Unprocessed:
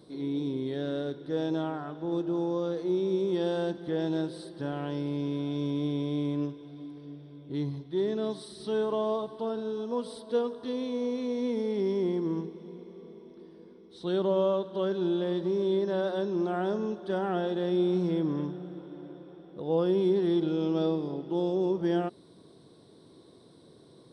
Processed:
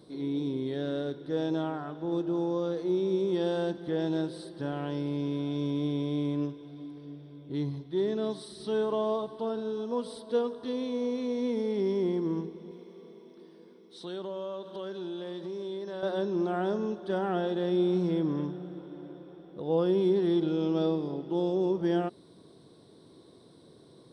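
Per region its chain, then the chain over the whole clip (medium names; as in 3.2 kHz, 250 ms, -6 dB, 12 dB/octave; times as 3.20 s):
12.71–16.03 s: high-pass 120 Hz + tilt EQ +1.5 dB/octave + compression 2.5:1, threshold -37 dBFS
whole clip: none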